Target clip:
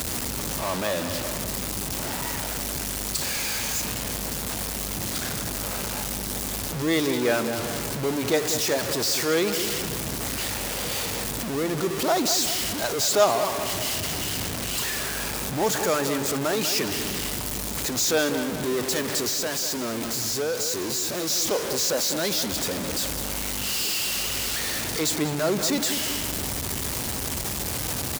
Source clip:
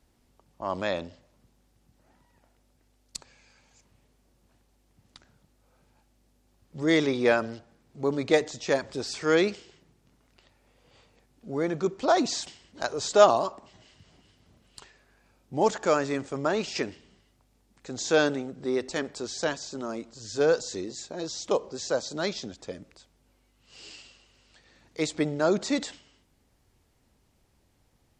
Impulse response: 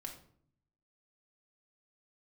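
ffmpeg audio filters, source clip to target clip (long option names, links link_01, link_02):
-filter_complex "[0:a]aeval=exprs='val(0)+0.5*0.0841*sgn(val(0))':channel_layout=same,highpass=54,highshelf=frequency=5200:gain=9,asettb=1/sr,asplit=3[link_01][link_02][link_03];[link_01]atrim=end=19.284[link_04];[link_02]atrim=start=19.28:end=21.3,asetpts=PTS-STARTPTS,afade=type=in:duration=0.004:curve=qsin,afade=type=out:start_time=2.016:duration=0.004:curve=qsin,acompressor=threshold=-20dB:ratio=6[link_05];[link_03]atrim=start=21.296[link_06];[link_04][link_05]acrossfade=duration=0.004:curve1=hsin:curve2=qsin[link_07];[link_07][link_06]acrossfade=duration=0.004:curve1=qsin:curve2=hsin,asplit=2[link_08][link_09];[link_09]adelay=195,lowpass=frequency=3800:poles=1,volume=-9dB,asplit=2[link_10][link_11];[link_11]adelay=195,lowpass=frequency=3800:poles=1,volume=0.5,asplit=2[link_12][link_13];[link_13]adelay=195,lowpass=frequency=3800:poles=1,volume=0.5,asplit=2[link_14][link_15];[link_15]adelay=195,lowpass=frequency=3800:poles=1,volume=0.5,asplit=2[link_16][link_17];[link_17]adelay=195,lowpass=frequency=3800:poles=1,volume=0.5,asplit=2[link_18][link_19];[link_19]adelay=195,lowpass=frequency=3800:poles=1,volume=0.5[link_20];[link_08][link_10][link_12][link_14][link_16][link_18][link_20]amix=inputs=7:normalize=0,volume=-4dB"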